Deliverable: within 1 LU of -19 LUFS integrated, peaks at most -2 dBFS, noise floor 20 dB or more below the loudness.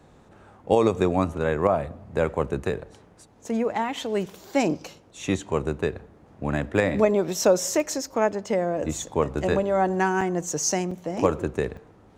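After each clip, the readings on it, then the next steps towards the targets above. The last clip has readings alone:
dropouts 3; longest dropout 4.1 ms; loudness -25.0 LUFS; peak -6.0 dBFS; loudness target -19.0 LUFS
-> interpolate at 10.21/10.91/11.77, 4.1 ms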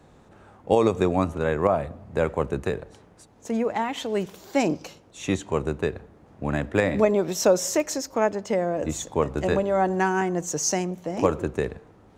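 dropouts 0; loudness -25.0 LUFS; peak -6.0 dBFS; loudness target -19.0 LUFS
-> gain +6 dB; limiter -2 dBFS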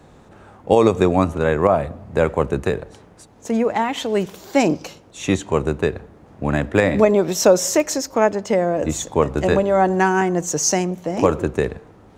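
loudness -19.5 LUFS; peak -2.0 dBFS; noise floor -48 dBFS

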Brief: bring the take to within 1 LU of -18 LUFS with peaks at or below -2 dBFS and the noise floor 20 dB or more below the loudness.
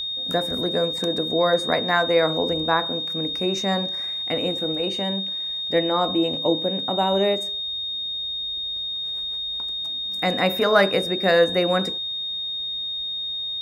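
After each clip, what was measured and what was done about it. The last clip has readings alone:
ticks 21/s; steady tone 3700 Hz; tone level -26 dBFS; loudness -22.5 LUFS; peak -4.0 dBFS; loudness target -18.0 LUFS
-> de-click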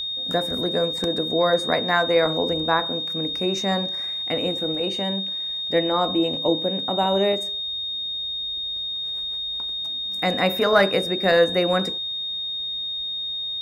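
ticks 0.073/s; steady tone 3700 Hz; tone level -26 dBFS
-> notch 3700 Hz, Q 30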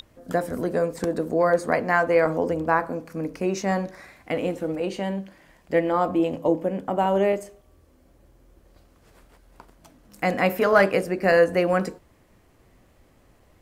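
steady tone none; loudness -23.5 LUFS; peak -5.0 dBFS; loudness target -18.0 LUFS
-> gain +5.5 dB; limiter -2 dBFS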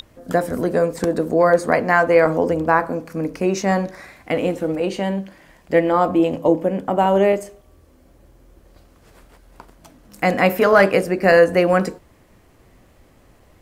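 loudness -18.5 LUFS; peak -2.0 dBFS; noise floor -53 dBFS

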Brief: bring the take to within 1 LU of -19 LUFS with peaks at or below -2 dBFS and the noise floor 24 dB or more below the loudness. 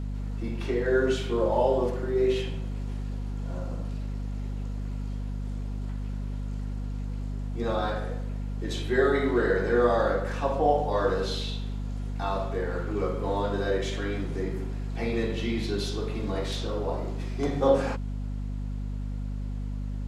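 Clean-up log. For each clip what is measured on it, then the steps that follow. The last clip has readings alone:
hum 50 Hz; harmonics up to 250 Hz; hum level -29 dBFS; loudness -29.0 LUFS; peak -9.5 dBFS; loudness target -19.0 LUFS
-> notches 50/100/150/200/250 Hz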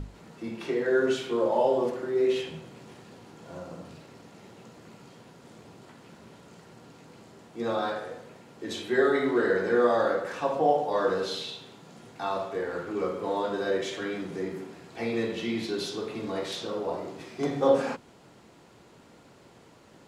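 hum none; loudness -28.5 LUFS; peak -10.0 dBFS; loudness target -19.0 LUFS
-> gain +9.5 dB; limiter -2 dBFS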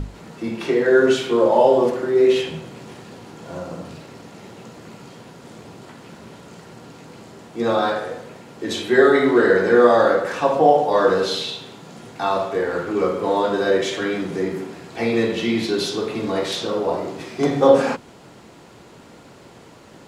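loudness -19.0 LUFS; peak -2.0 dBFS; noise floor -45 dBFS

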